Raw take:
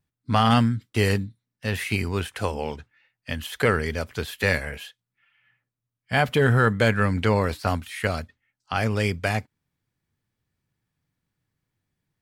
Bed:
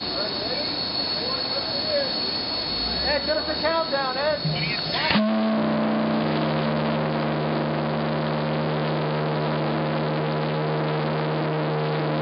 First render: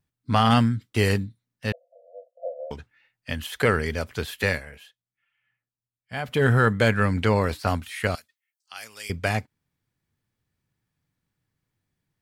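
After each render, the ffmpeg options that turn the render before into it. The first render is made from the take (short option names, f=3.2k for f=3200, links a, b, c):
-filter_complex "[0:a]asettb=1/sr,asplit=3[a][b][c];[a]atrim=end=1.724[d];[b]atrim=start=1.72:end=2.71,asetpts=PTS-STARTPTS,afade=t=in:d=0.004:c=qsin,afade=t=out:st=0.986:d=0.004:c=qsin,asuperpass=centerf=590:order=20:qfactor=2.7[e];[c]atrim=start=2.706[f];[d][e]acrossfade=d=0.004:c1=hsin:c2=qsin[g];[g][f]acrossfade=d=0.004:c1=qsin:c2=hsin,asettb=1/sr,asplit=3[h][i][j];[h]atrim=end=8.154[k];[i]atrim=start=8.15:end=9.1,asetpts=PTS-STARTPTS,afade=t=in:d=0.004:c=qsin,afade=t=out:st=0.946:d=0.004:c=qsin,aderivative[l];[j]atrim=start=9.096[m];[k][l]acrossfade=d=0.004:c1=hsin:c2=qsin[n];[n][m]acrossfade=d=0.004:c1=qsin:c2=hsin,asplit=3[o][p][q];[o]atrim=end=4.65,asetpts=PTS-STARTPTS,afade=t=out:st=4.42:d=0.23:silence=0.316228[r];[p]atrim=start=4.65:end=6.23,asetpts=PTS-STARTPTS,volume=-10dB[s];[q]atrim=start=6.23,asetpts=PTS-STARTPTS,afade=t=in:d=0.23:silence=0.316228[t];[r][s][t]concat=n=3:v=0:a=1"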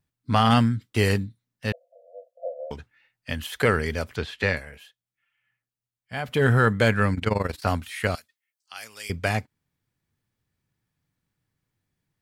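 -filter_complex "[0:a]asettb=1/sr,asplit=3[a][b][c];[a]atrim=end=4.164[d];[b]atrim=start=4.16:end=4.57,asetpts=PTS-STARTPTS,afade=t=in:d=0.004:c=qsin,afade=t=out:st=0.406:d=0.004:c=qsin,lowpass=4.8k[e];[c]atrim=start=4.566[f];[d][e]acrossfade=d=0.004:c1=hsin:c2=qsin[g];[g][f]acrossfade=d=0.004:c1=qsin:c2=hsin,asettb=1/sr,asplit=3[h][i][j];[h]atrim=end=7.144[k];[i]atrim=start=7.14:end=7.62,asetpts=PTS-STARTPTS,afade=t=in:d=0.004:c=qsin,afade=t=out:st=0.476:d=0.004:c=qsin,tremolo=f=22:d=0.857[l];[j]atrim=start=7.616[m];[k][l]acrossfade=d=0.004:c1=hsin:c2=qsin[n];[n][m]acrossfade=d=0.004:c1=qsin:c2=hsin"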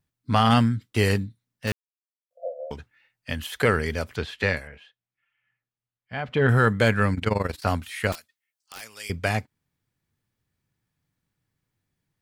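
-filter_complex "[0:a]asettb=1/sr,asplit=3[a][b][c];[a]atrim=end=1.674[d];[b]atrim=start=1.67:end=2.31,asetpts=PTS-STARTPTS,afade=t=in:d=0.004:c=qsin,afade=t=out:st=0.636:d=0.004:c=qsin,aeval=exprs='val(0)*gte(abs(val(0)),0.0398)':c=same[e];[c]atrim=start=2.306[f];[d][e]acrossfade=d=0.004:c1=hsin:c2=qsin[g];[g][f]acrossfade=d=0.004:c1=qsin:c2=hsin,asettb=1/sr,asplit=3[h][i][j];[h]atrim=end=4.674[k];[i]atrim=start=4.67:end=6.49,asetpts=PTS-STARTPTS,afade=t=in:d=0.004:c=qsin,afade=t=out:st=1.816:d=0.004:c=qsin,lowpass=3.3k[l];[j]atrim=start=6.486[m];[k][l]acrossfade=d=0.004:c1=hsin:c2=qsin[n];[n][m]acrossfade=d=0.004:c1=qsin:c2=hsin,asettb=1/sr,asplit=3[o][p][q];[o]atrim=end=8.124[r];[p]atrim=start=8.12:end=8.81,asetpts=PTS-STARTPTS,afade=t=in:d=0.004:c=qsin,afade=t=out:st=0.686:d=0.004:c=qsin,aeval=exprs='(mod(31.6*val(0)+1,2)-1)/31.6':c=same[s];[q]atrim=start=8.806[t];[r][s]acrossfade=d=0.004:c1=hsin:c2=qsin[u];[u][t]acrossfade=d=0.004:c1=qsin:c2=hsin"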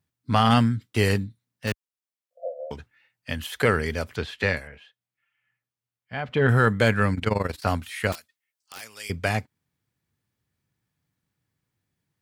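-af "highpass=53"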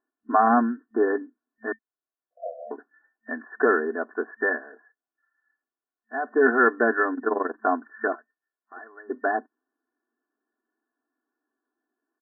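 -af "afftfilt=real='re*between(b*sr/4096,220,1800)':imag='im*between(b*sr/4096,220,1800)':win_size=4096:overlap=0.75,aecho=1:1:2.8:0.96"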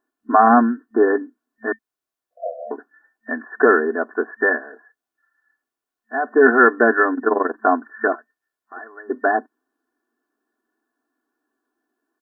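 -af "volume=6.5dB,alimiter=limit=-1dB:level=0:latency=1"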